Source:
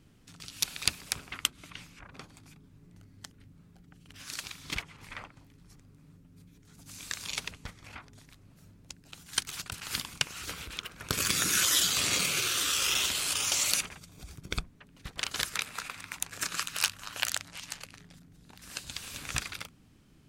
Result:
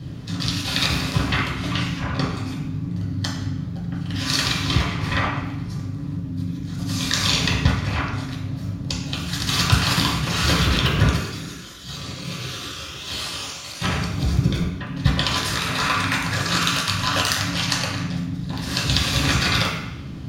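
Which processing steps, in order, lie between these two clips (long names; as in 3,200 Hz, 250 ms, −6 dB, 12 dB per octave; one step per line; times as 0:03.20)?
0:10.71–0:12.99: low-shelf EQ 400 Hz +7.5 dB
compressor whose output falls as the input rises −37 dBFS, ratio −0.5
convolution reverb RT60 0.80 s, pre-delay 3 ms, DRR −6.5 dB
level +3 dB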